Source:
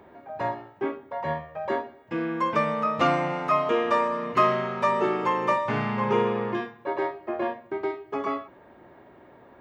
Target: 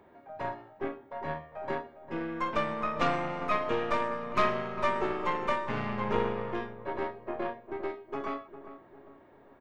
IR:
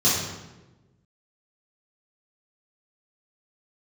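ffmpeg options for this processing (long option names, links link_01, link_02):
-filter_complex "[0:a]aeval=exprs='0.398*(cos(1*acos(clip(val(0)/0.398,-1,1)))-cos(1*PI/2))+0.0891*(cos(4*acos(clip(val(0)/0.398,-1,1)))-cos(4*PI/2))':channel_layout=same,asplit=2[link_01][link_02];[link_02]adelay=402,lowpass=frequency=970:poles=1,volume=-11dB,asplit=2[link_03][link_04];[link_04]adelay=402,lowpass=frequency=970:poles=1,volume=0.48,asplit=2[link_05][link_06];[link_06]adelay=402,lowpass=frequency=970:poles=1,volume=0.48,asplit=2[link_07][link_08];[link_08]adelay=402,lowpass=frequency=970:poles=1,volume=0.48,asplit=2[link_09][link_10];[link_10]adelay=402,lowpass=frequency=970:poles=1,volume=0.48[link_11];[link_01][link_03][link_05][link_07][link_09][link_11]amix=inputs=6:normalize=0,volume=-7dB"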